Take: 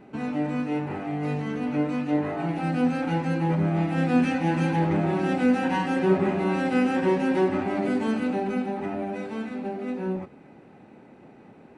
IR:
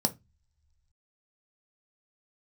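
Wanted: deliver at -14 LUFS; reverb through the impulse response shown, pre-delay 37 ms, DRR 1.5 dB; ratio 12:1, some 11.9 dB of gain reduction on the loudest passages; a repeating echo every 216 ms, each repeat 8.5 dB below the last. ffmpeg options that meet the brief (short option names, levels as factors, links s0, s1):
-filter_complex "[0:a]acompressor=threshold=0.0398:ratio=12,aecho=1:1:216|432|648|864:0.376|0.143|0.0543|0.0206,asplit=2[s0][s1];[1:a]atrim=start_sample=2205,adelay=37[s2];[s1][s2]afir=irnorm=-1:irlink=0,volume=0.376[s3];[s0][s3]amix=inputs=2:normalize=0,volume=3.35"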